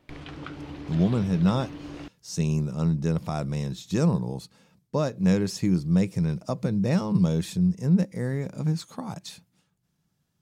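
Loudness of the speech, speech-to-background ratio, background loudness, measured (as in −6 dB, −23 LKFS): −26.0 LKFS, 14.5 dB, −40.5 LKFS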